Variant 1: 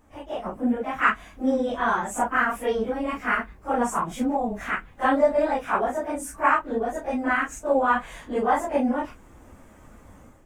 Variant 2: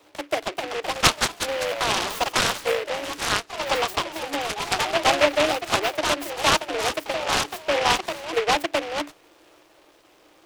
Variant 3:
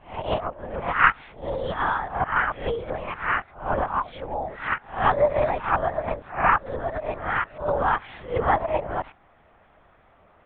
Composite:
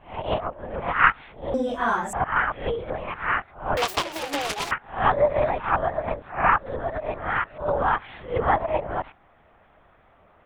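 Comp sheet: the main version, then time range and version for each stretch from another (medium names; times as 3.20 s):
3
1.54–2.13 s: from 1
3.77–4.71 s: from 2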